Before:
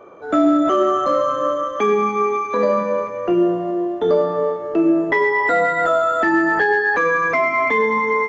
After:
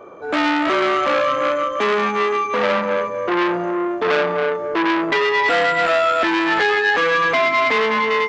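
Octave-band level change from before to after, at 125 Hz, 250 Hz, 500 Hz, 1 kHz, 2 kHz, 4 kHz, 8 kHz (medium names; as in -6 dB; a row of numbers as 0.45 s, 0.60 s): -2.0 dB, -3.5 dB, -1.0 dB, +0.5 dB, +1.5 dB, +13.0 dB, no reading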